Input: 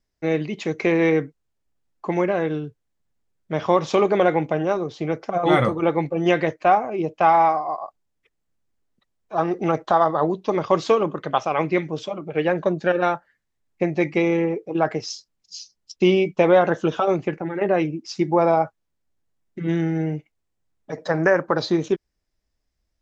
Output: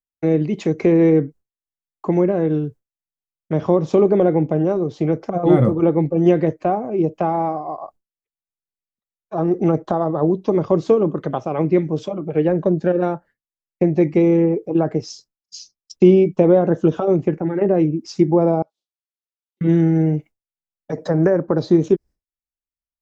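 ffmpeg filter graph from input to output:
-filter_complex "[0:a]asettb=1/sr,asplit=3[a][b][c];[a]atrim=end=18.624[d];[b]atrim=start=18.62:end=19.61,asetpts=PTS-STARTPTS,afade=t=in:d=0.004:c=qsin,afade=t=out:st=0.986:d=0.004:c=qsin,highshelf=f=2.5k:t=q:w=3:g=13.5,acompressor=threshold=-47dB:ratio=4:attack=3.2:release=140:knee=1:detection=peak,highpass=610,lowpass=5.2k[e];[c]atrim=start=19.606[f];[d][e]acrossfade=d=0.004:c1=hsin:c2=qsin[g];[g][f]acrossfade=d=0.004:c1=qsin:c2=hsin,agate=range=-33dB:threshold=-39dB:ratio=3:detection=peak,equalizer=f=3k:t=o:w=2.6:g=-8,acrossover=split=480[h][i];[i]acompressor=threshold=-41dB:ratio=2.5[j];[h][j]amix=inputs=2:normalize=0,volume=8dB"

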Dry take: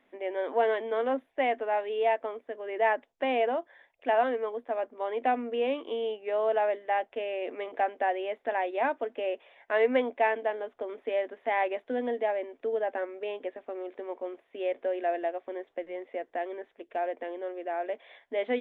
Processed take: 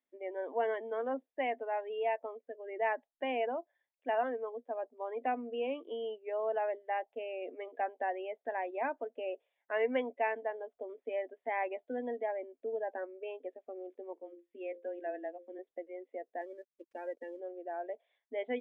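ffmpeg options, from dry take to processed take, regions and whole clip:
-filter_complex "[0:a]asettb=1/sr,asplit=3[a][b][c];[a]atrim=end=14.134[d];[b]atrim=start=14.13:end=15.59,asetpts=PTS-STARTPTS,afade=t=in:d=0.004:c=qsin,afade=t=out:st=1.456:d=0.004:c=qsin,equalizer=f=650:t=o:w=1.5:g=-3,bandreject=f=60:t=h:w=6,bandreject=f=120:t=h:w=6,bandreject=f=180:t=h:w=6,bandreject=f=240:t=h:w=6,bandreject=f=300:t=h:w=6,bandreject=f=360:t=h:w=6,bandreject=f=420:t=h:w=6,bandreject=f=480:t=h:w=6,bandreject=f=540:t=h:w=6,afreqshift=-15[e];[c]atrim=start=15.586[f];[d][e]acrossfade=d=0.004:c1=hsin:c2=qsin[g];[g][f]acrossfade=d=0.004:c1=qsin:c2=hsin,asettb=1/sr,asplit=3[h][i][j];[h]atrim=end=16.414[k];[i]atrim=start=16.41:end=17.4,asetpts=PTS-STARTPTS,afade=t=in:d=0.004:c=qsin,afade=t=out:st=0.986:d=0.004:c=qsin,equalizer=f=740:w=4.1:g=-7.5,aecho=1:1:3.6:0.47,atrim=end_sample=43659,aeval=exprs='sgn(val(0))*max(abs(val(0))-0.00168,0)':c=same[l];[j]atrim=start=17.396[m];[k][l]acrossfade=d=0.004:c1=hsin:c2=qsin[n];[n][m]acrossfade=d=0.004:c1=qsin:c2=hsin,afftdn=nr=20:nf=-37,bass=f=250:g=1,treble=f=4k:g=11,volume=-7dB"

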